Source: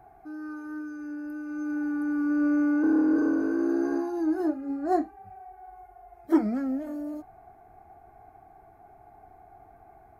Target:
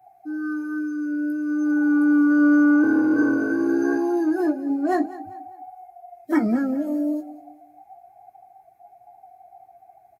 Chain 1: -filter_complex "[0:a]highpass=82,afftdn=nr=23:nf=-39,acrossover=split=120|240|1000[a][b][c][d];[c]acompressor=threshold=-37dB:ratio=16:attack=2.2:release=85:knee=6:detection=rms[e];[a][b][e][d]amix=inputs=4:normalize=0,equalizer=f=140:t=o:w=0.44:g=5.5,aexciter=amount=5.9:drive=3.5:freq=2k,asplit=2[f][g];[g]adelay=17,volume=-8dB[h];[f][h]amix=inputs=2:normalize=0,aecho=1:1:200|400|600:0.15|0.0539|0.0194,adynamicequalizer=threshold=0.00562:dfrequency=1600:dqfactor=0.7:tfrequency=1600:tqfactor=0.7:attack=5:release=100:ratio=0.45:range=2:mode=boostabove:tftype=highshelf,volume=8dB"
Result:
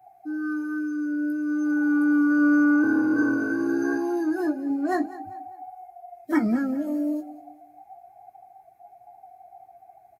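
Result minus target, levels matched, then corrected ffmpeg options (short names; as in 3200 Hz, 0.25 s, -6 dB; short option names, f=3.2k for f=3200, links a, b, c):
compressor: peak gain reduction +7.5 dB
-filter_complex "[0:a]highpass=82,afftdn=nr=23:nf=-39,acrossover=split=120|240|1000[a][b][c][d];[c]acompressor=threshold=-29dB:ratio=16:attack=2.2:release=85:knee=6:detection=rms[e];[a][b][e][d]amix=inputs=4:normalize=0,equalizer=f=140:t=o:w=0.44:g=5.5,aexciter=amount=5.9:drive=3.5:freq=2k,asplit=2[f][g];[g]adelay=17,volume=-8dB[h];[f][h]amix=inputs=2:normalize=0,aecho=1:1:200|400|600:0.15|0.0539|0.0194,adynamicequalizer=threshold=0.00562:dfrequency=1600:dqfactor=0.7:tfrequency=1600:tqfactor=0.7:attack=5:release=100:ratio=0.45:range=2:mode=boostabove:tftype=highshelf,volume=8dB"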